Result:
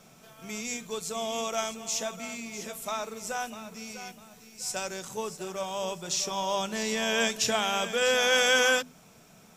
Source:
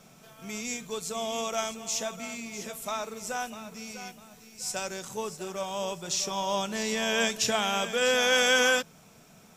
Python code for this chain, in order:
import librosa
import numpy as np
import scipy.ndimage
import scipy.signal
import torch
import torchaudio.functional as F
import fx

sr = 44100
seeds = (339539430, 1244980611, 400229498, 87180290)

y = fx.hum_notches(x, sr, base_hz=50, count=5)